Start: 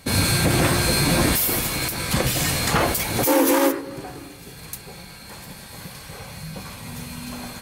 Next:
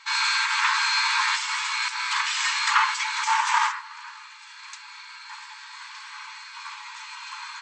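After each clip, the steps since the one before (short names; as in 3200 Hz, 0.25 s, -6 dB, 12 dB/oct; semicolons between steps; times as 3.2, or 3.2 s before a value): FFT band-pass 850–8200 Hz; high shelf 4100 Hz -10.5 dB; gain +5 dB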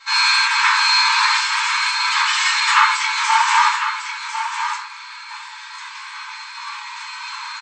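echo 1.05 s -8.5 dB; shoebox room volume 190 m³, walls furnished, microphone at 5.1 m; gain -3 dB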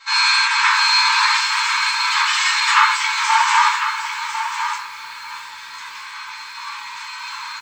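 lo-fi delay 0.64 s, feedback 35%, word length 6-bit, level -14 dB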